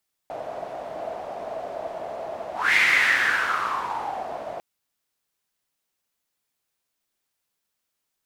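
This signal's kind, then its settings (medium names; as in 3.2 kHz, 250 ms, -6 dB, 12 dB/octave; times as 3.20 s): whoosh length 4.30 s, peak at 2.45 s, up 0.24 s, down 1.84 s, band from 660 Hz, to 2.1 kHz, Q 6.7, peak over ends 15 dB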